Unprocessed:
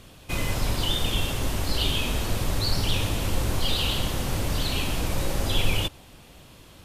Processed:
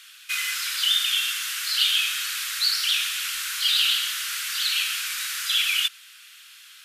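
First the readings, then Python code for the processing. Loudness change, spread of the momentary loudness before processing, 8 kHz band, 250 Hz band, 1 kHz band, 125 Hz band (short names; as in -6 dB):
+4.5 dB, 4 LU, +7.0 dB, under -40 dB, -4.5 dB, under -40 dB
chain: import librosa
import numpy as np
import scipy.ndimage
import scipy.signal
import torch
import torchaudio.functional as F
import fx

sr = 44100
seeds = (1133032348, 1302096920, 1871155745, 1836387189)

y = scipy.signal.sosfilt(scipy.signal.ellip(4, 1.0, 50, 1400.0, 'highpass', fs=sr, output='sos'), x)
y = y * 10.0 ** (7.5 / 20.0)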